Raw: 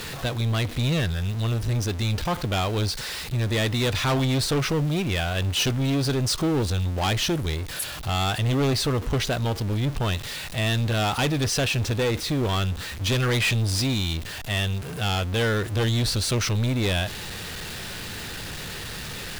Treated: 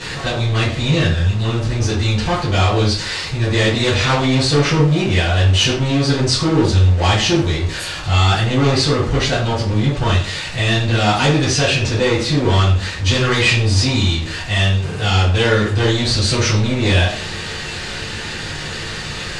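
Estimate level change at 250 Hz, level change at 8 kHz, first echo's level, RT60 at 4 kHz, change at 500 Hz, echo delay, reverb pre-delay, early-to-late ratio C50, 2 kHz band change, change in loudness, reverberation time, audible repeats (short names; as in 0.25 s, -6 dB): +8.0 dB, +6.0 dB, none, 0.35 s, +8.5 dB, none, 3 ms, 4.5 dB, +9.5 dB, +8.5 dB, 0.50 s, none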